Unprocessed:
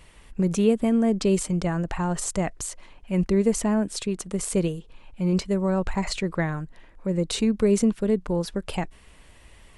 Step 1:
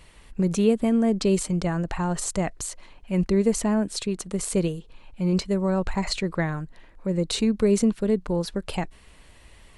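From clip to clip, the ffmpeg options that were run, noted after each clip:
-af "equalizer=f=4.2k:t=o:w=0.2:g=4.5"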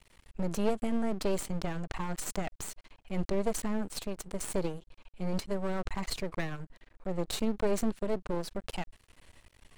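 -af "aeval=exprs='max(val(0),0)':c=same,volume=-4dB"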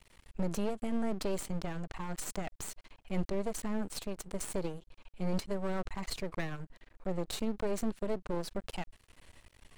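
-af "alimiter=limit=-22.5dB:level=0:latency=1:release=493"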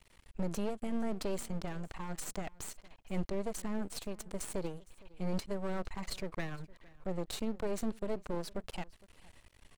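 -af "aecho=1:1:461:0.075,volume=-2dB"

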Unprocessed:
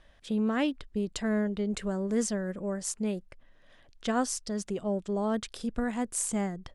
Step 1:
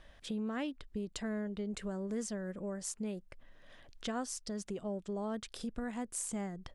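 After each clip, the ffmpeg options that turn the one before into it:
-af "acompressor=threshold=-45dB:ratio=2,volume=1.5dB"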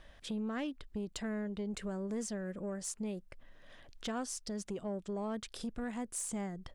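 -af "asoftclip=type=tanh:threshold=-30dB,volume=1dB"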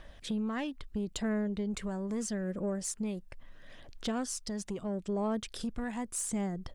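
-af "aphaser=in_gain=1:out_gain=1:delay=1.2:decay=0.32:speed=0.76:type=triangular,volume=3dB"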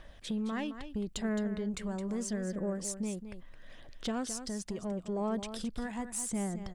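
-af "aecho=1:1:216:0.299,volume=-1dB"

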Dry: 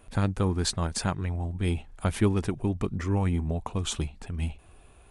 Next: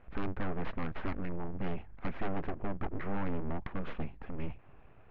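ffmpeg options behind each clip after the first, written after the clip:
-af "aeval=exprs='abs(val(0))':c=same,lowpass=f=2.3k:w=0.5412,lowpass=f=2.3k:w=1.3066,asoftclip=type=tanh:threshold=-23dB,volume=-1dB"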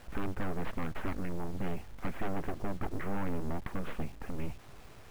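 -filter_complex "[0:a]asplit=2[a][b];[b]acompressor=threshold=-37dB:ratio=16,volume=1dB[c];[a][c]amix=inputs=2:normalize=0,acrusher=bits=8:mix=0:aa=0.000001,volume=-2.5dB"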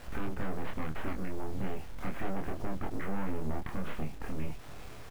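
-filter_complex "[0:a]asplit=2[a][b];[b]alimiter=level_in=7dB:limit=-24dB:level=0:latency=1:release=87,volume=-7dB,volume=-3dB[c];[a][c]amix=inputs=2:normalize=0,acompressor=threshold=-35dB:ratio=1.5,asplit=2[d][e];[e]adelay=26,volume=-3dB[f];[d][f]amix=inputs=2:normalize=0,volume=-1dB"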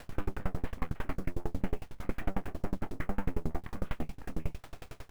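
-af "aeval=exprs='val(0)*pow(10,-32*if(lt(mod(11*n/s,1),2*abs(11)/1000),1-mod(11*n/s,1)/(2*abs(11)/1000),(mod(11*n/s,1)-2*abs(11)/1000)/(1-2*abs(11)/1000))/20)':c=same,volume=6.5dB"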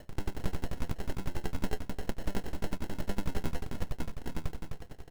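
-filter_complex "[0:a]acrusher=samples=37:mix=1:aa=0.000001,asplit=2[a][b];[b]aecho=0:1:257:0.531[c];[a][c]amix=inputs=2:normalize=0,volume=-1dB"

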